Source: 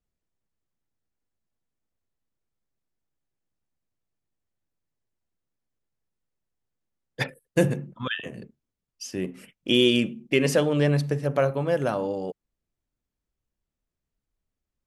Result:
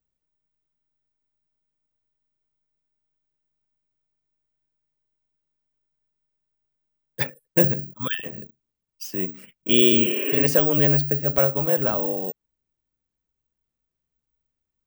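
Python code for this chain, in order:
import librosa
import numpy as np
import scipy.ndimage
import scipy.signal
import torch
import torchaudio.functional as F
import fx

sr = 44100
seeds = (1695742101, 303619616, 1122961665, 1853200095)

y = fx.spec_repair(x, sr, seeds[0], start_s=9.94, length_s=0.44, low_hz=270.0, high_hz=3300.0, source='both')
y = (np.kron(scipy.signal.resample_poly(y, 1, 2), np.eye(2)[0]) * 2)[:len(y)]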